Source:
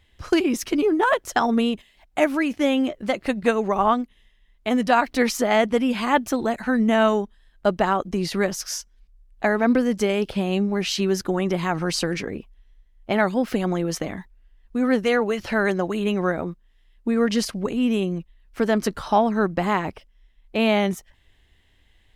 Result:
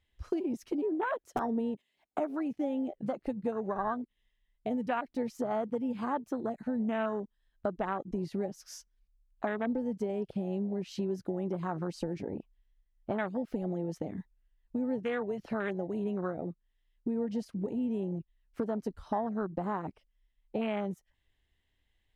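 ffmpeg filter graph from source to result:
ffmpeg -i in.wav -filter_complex "[0:a]asettb=1/sr,asplit=3[link_01][link_02][link_03];[link_01]atrim=end=1.264[link_04];[link_02]atrim=start=1.26:end=2.2,asetpts=PTS-STARTPTS,afade=type=in:duration=0.004:curve=qsin,afade=type=out:start_time=0.936:duration=0.004:curve=qsin,highpass=140,aeval=exprs='(mod(2.99*val(0)+1,2)-1)/2.99':channel_layout=same,equalizer=frequency=360:width=1.1:gain=4.5[link_05];[link_03]atrim=start=2.196[link_06];[link_04][link_05]acrossfade=duration=0.004:curve1=hsin:curve2=qsin[link_07];[link_07][link_06]acrossfade=duration=0.004:curve1=qsin:curve2=hsin,afwtdn=0.0708,acompressor=threshold=-34dB:ratio=3" out.wav

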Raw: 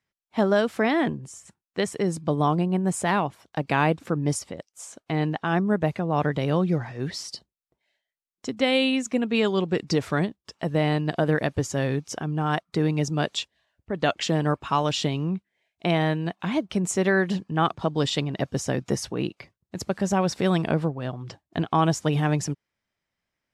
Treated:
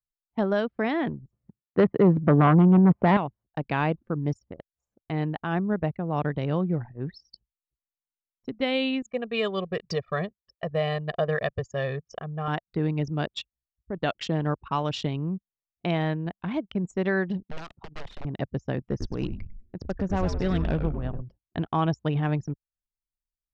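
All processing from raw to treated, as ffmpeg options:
ffmpeg -i in.wav -filter_complex "[0:a]asettb=1/sr,asplit=3[link_01][link_02][link_03];[link_01]atrim=end=1.314[link_04];[link_02]atrim=start=1.31:end=3.17,asetpts=PTS-STARTPTS,afade=type=in:duration=0.004:curve=qsin,afade=type=out:start_time=1.856:duration=0.004:curve=qsin,tiltshelf=frequency=740:gain=3.5,aeval=exprs='0.376*sin(PI/2*2.24*val(0)/0.376)':channel_layout=same,highpass=130,lowpass=2200[link_05];[link_03]atrim=start=3.166[link_06];[link_04][link_05]acrossfade=duration=0.004:curve1=hsin:curve2=qsin[link_07];[link_07][link_06]acrossfade=duration=0.004:curve1=qsin:curve2=hsin,asettb=1/sr,asplit=3[link_08][link_09][link_10];[link_08]atrim=end=9.024[link_11];[link_09]atrim=start=9.02:end=12.48,asetpts=PTS-STARTPTS,afade=type=in:duration=0.004:curve=qsin,afade=type=out:start_time=3.456:duration=0.004:curve=qsin,highpass=frequency=250:poles=1,aecho=1:1:1.7:0.85,atrim=end_sample=152586[link_12];[link_10]atrim=start=12.476[link_13];[link_11][link_12]acrossfade=duration=0.004:curve1=hsin:curve2=qsin[link_14];[link_14][link_13]acrossfade=duration=0.004:curve1=qsin:curve2=hsin,asettb=1/sr,asplit=3[link_15][link_16][link_17];[link_15]atrim=end=17.424[link_18];[link_16]atrim=start=17.42:end=18.25,asetpts=PTS-STARTPTS,afade=type=in:duration=0.004:curve=qsin,afade=type=out:start_time=0.826:duration=0.004:curve=qsin,highpass=140,acompressor=threshold=-24dB:ratio=12:attack=3.2:release=140:knee=1:detection=peak,aeval=exprs='(mod(20*val(0)+1,2)-1)/20':channel_layout=same[link_19];[link_17]atrim=start=18.246[link_20];[link_18][link_19]acrossfade=duration=0.004:curve1=hsin:curve2=qsin[link_21];[link_21][link_20]acrossfade=duration=0.004:curve1=qsin:curve2=hsin,asettb=1/sr,asplit=3[link_22][link_23][link_24];[link_22]atrim=end=18.894[link_25];[link_23]atrim=start=18.89:end=21.22,asetpts=PTS-STARTPTS,afade=type=in:duration=0.004:curve=qsin,afade=type=out:start_time=2.326:duration=0.004:curve=qsin,aeval=exprs='clip(val(0),-1,0.158)':channel_layout=same,asplit=8[link_26][link_27][link_28][link_29][link_30][link_31][link_32][link_33];[link_27]adelay=99,afreqshift=-110,volume=-7dB[link_34];[link_28]adelay=198,afreqshift=-220,volume=-11.9dB[link_35];[link_29]adelay=297,afreqshift=-330,volume=-16.8dB[link_36];[link_30]adelay=396,afreqshift=-440,volume=-21.6dB[link_37];[link_31]adelay=495,afreqshift=-550,volume=-26.5dB[link_38];[link_32]adelay=594,afreqshift=-660,volume=-31.4dB[link_39];[link_33]adelay=693,afreqshift=-770,volume=-36.3dB[link_40];[link_26][link_34][link_35][link_36][link_37][link_38][link_39][link_40]amix=inputs=8:normalize=0,atrim=end_sample=102753[link_41];[link_24]atrim=start=21.216[link_42];[link_25][link_41]acrossfade=duration=0.004:curve1=hsin:curve2=qsin[link_43];[link_43][link_42]acrossfade=duration=0.004:curve1=qsin:curve2=hsin,lowpass=5000,anlmdn=25.1,lowshelf=frequency=79:gain=11.5,volume=-4.5dB" out.wav

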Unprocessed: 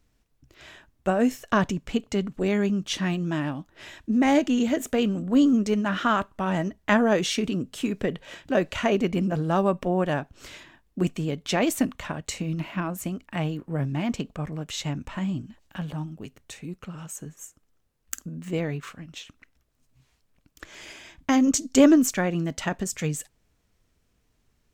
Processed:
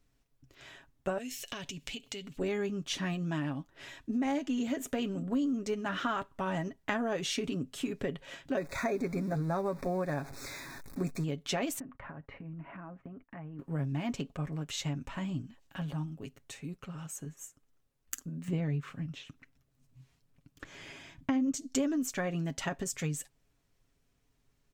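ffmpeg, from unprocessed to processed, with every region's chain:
ffmpeg -i in.wav -filter_complex "[0:a]asettb=1/sr,asplit=3[link_01][link_02][link_03];[link_01]atrim=end=1.184[link_04];[link_02]atrim=start=1.18:end=2.38,asetpts=PTS-STARTPTS,afade=type=in:duration=0.004:curve=qsin,afade=type=out:start_time=1.196:duration=0.004:curve=qsin,highshelf=frequency=1900:width_type=q:width=1.5:gain=12,acompressor=threshold=-33dB:ratio=6:attack=3.2:release=140:knee=1:detection=peak[link_05];[link_03]atrim=start=2.376[link_06];[link_04][link_05]acrossfade=duration=0.004:curve1=hsin:curve2=qsin[link_07];[link_07][link_06]acrossfade=duration=0.004:curve1=qsin:curve2=hsin,asettb=1/sr,asplit=3[link_08][link_09][link_10];[link_08]atrim=end=8.574[link_11];[link_09]atrim=start=8.57:end=11.24,asetpts=PTS-STARTPTS,afade=type=in:duration=0.004:curve=qsin,afade=type=out:start_time=2.666:duration=0.004:curve=qsin,aeval=exprs='val(0)+0.5*0.0141*sgn(val(0))':channel_layout=same,asuperstop=centerf=3000:order=8:qfactor=2.8[link_12];[link_10]atrim=start=11.236[link_13];[link_11][link_12]acrossfade=duration=0.004:curve1=hsin:curve2=qsin[link_14];[link_14][link_13]acrossfade=duration=0.004:curve1=qsin:curve2=hsin,asettb=1/sr,asplit=3[link_15][link_16][link_17];[link_15]atrim=end=11.794[link_18];[link_16]atrim=start=11.79:end=13.59,asetpts=PTS-STARTPTS,afade=type=in:duration=0.004:curve=qsin,afade=type=out:start_time=1.796:duration=0.004:curve=qsin,lowpass=frequency=1900:width=0.5412,lowpass=frequency=1900:width=1.3066,agate=range=-15dB:threshold=-49dB:ratio=16:release=100:detection=peak,acompressor=threshold=-36dB:ratio=8:attack=3.2:release=140:knee=1:detection=peak[link_19];[link_17]atrim=start=13.586[link_20];[link_18][link_19]acrossfade=duration=0.004:curve1=hsin:curve2=qsin[link_21];[link_21][link_20]acrossfade=duration=0.004:curve1=qsin:curve2=hsin,asettb=1/sr,asplit=3[link_22][link_23][link_24];[link_22]atrim=end=18.484[link_25];[link_23]atrim=start=18.48:end=21.52,asetpts=PTS-STARTPTS,afade=type=in:duration=0.004:curve=qsin,afade=type=out:start_time=3.036:duration=0.004:curve=qsin,acrossover=split=3900[link_26][link_27];[link_27]acompressor=threshold=-54dB:ratio=4:attack=1:release=60[link_28];[link_26][link_28]amix=inputs=2:normalize=0,equalizer=frequency=140:width=0.72:gain=9[link_29];[link_24]atrim=start=21.516[link_30];[link_25][link_29]acrossfade=duration=0.004:curve1=hsin:curve2=qsin[link_31];[link_31][link_30]acrossfade=duration=0.004:curve1=qsin:curve2=hsin,aecho=1:1:7.3:0.47,acompressor=threshold=-24dB:ratio=4,volume=-5.5dB" out.wav

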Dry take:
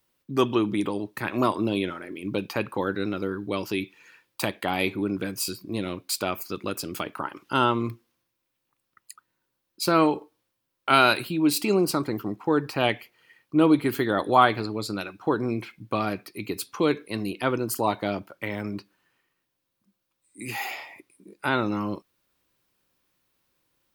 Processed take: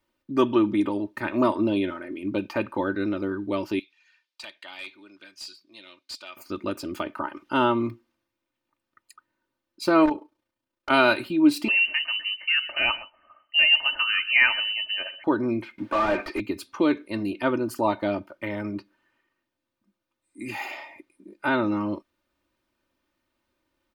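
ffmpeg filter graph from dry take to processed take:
ffmpeg -i in.wav -filter_complex "[0:a]asettb=1/sr,asplit=3[link_01][link_02][link_03];[link_01]atrim=end=3.794[link_04];[link_02]atrim=start=3.79:end=6.37,asetpts=PTS-STARTPTS,afade=type=in:duration=0.004:curve=qsin,afade=type=out:start_time=2.576:duration=0.004:curve=qsin,bandpass=frequency=4500:width_type=q:width=1.4,asoftclip=type=hard:threshold=-26.5dB[link_05];[link_03]atrim=start=6.366[link_06];[link_04][link_05]acrossfade=duration=0.004:curve1=hsin:curve2=qsin[link_07];[link_07][link_06]acrossfade=duration=0.004:curve1=qsin:curve2=hsin,asettb=1/sr,asplit=3[link_08][link_09][link_10];[link_08]atrim=end=10.054[link_11];[link_09]atrim=start=10.05:end=10.9,asetpts=PTS-STARTPTS,afade=type=in:duration=0.004:curve=qsin,afade=type=out:start_time=0.846:duration=0.004:curve=qsin,tremolo=f=29:d=0.571,aeval=exprs='0.133*(abs(mod(val(0)/0.133+3,4)-2)-1)':channel_layout=same[link_12];[link_10]atrim=start=10.896[link_13];[link_11][link_12]acrossfade=duration=0.004:curve1=hsin:curve2=qsin[link_14];[link_14][link_13]acrossfade=duration=0.004:curve1=qsin:curve2=hsin,asettb=1/sr,asplit=3[link_15][link_16][link_17];[link_15]atrim=end=11.684[link_18];[link_16]atrim=start=11.68:end=15.24,asetpts=PTS-STARTPTS,afade=type=in:duration=0.004:curve=qsin,afade=type=out:start_time=3.556:duration=0.004:curve=qsin,equalizer=frequency=93:width_type=o:width=0.7:gain=15,aecho=1:1:126:0.133,atrim=end_sample=156996,lowpass=frequency=2600:width_type=q:width=0.5098,lowpass=frequency=2600:width_type=q:width=0.6013,lowpass=frequency=2600:width_type=q:width=0.9,lowpass=frequency=2600:width_type=q:width=2.563,afreqshift=-3100[link_19];[link_17]atrim=start=15.236[link_20];[link_18][link_19]acrossfade=duration=0.004:curve1=hsin:curve2=qsin[link_21];[link_21][link_20]acrossfade=duration=0.004:curve1=qsin:curve2=hsin,asettb=1/sr,asplit=3[link_22][link_23][link_24];[link_22]atrim=end=15.784[link_25];[link_23]atrim=start=15.78:end=16.4,asetpts=PTS-STARTPTS,afade=type=in:duration=0.004:curve=qsin,afade=type=out:start_time=0.616:duration=0.004:curve=qsin,highpass=frequency=480:poles=1,asplit=2[link_26][link_27];[link_27]highpass=frequency=720:poles=1,volume=35dB,asoftclip=type=tanh:threshold=-15.5dB[link_28];[link_26][link_28]amix=inputs=2:normalize=0,lowpass=frequency=1200:poles=1,volume=-6dB[link_29];[link_24]atrim=start=16.396[link_30];[link_25][link_29]acrossfade=duration=0.004:curve1=hsin:curve2=qsin[link_31];[link_31][link_30]acrossfade=duration=0.004:curve1=qsin:curve2=hsin,lowpass=frequency=2300:poles=1,aecho=1:1:3.3:0.65" out.wav

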